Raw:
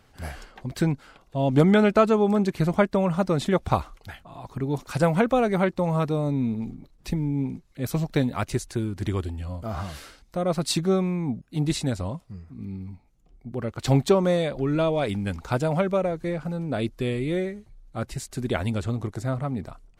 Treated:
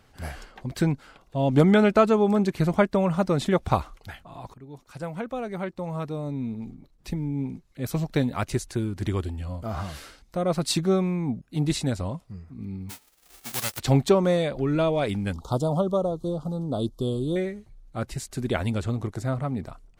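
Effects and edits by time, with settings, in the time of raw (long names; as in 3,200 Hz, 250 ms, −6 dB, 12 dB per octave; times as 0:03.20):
0:04.54–0:08.56: fade in, from −18.5 dB
0:12.89–0:13.78: spectral envelope flattened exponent 0.1
0:15.33–0:17.36: elliptic band-stop filter 1,200–3,300 Hz, stop band 50 dB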